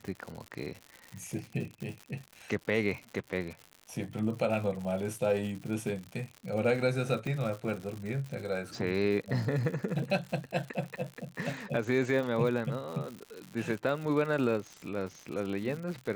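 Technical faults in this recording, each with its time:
crackle 130 per s -37 dBFS
7.27 s: pop -24 dBFS

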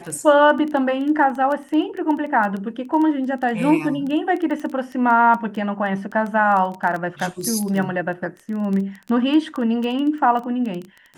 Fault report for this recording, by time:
crackle 11 per s -24 dBFS

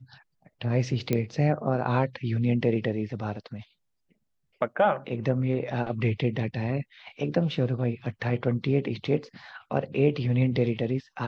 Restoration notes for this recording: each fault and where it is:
1.13 s: pop -12 dBFS

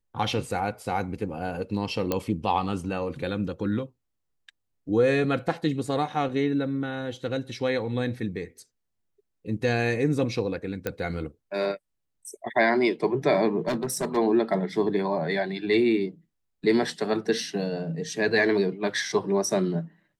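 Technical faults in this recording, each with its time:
2.12 s: pop -11 dBFS
10.87 s: pop -14 dBFS
13.67–14.18 s: clipped -23 dBFS

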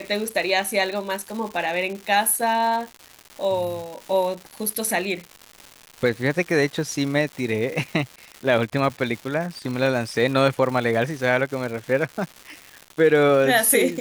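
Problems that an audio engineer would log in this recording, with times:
crackle 310 per s -30 dBFS

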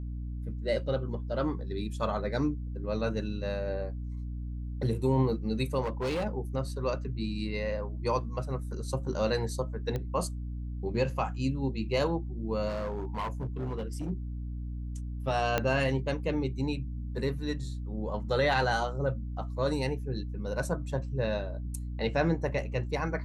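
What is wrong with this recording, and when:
hum 60 Hz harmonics 5 -36 dBFS
5.82–6.25 s: clipped -27.5 dBFS
9.96 s: pop -21 dBFS
12.68–14.11 s: clipped -29.5 dBFS
15.58 s: pop -12 dBFS

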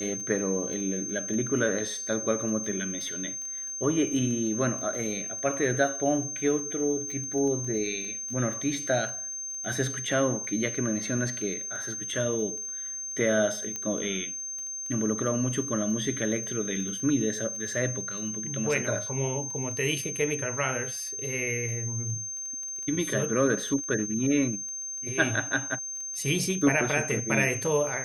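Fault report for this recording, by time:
crackle 14 per s -35 dBFS
whine 6.3 kHz -33 dBFS
13.76 s: pop -19 dBFS

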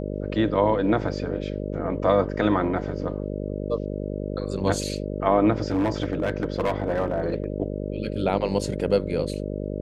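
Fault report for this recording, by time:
buzz 50 Hz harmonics 12 -30 dBFS
5.68–7.44 s: clipped -18.5 dBFS

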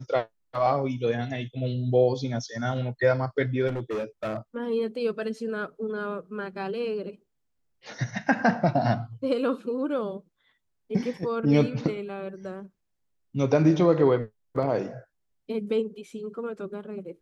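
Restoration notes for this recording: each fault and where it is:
3.67–4.38 s: clipped -26.5 dBFS

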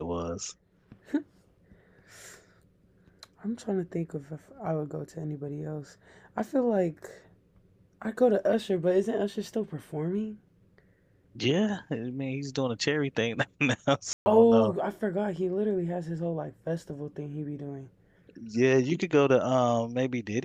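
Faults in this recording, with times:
14.13–14.26 s: dropout 130 ms

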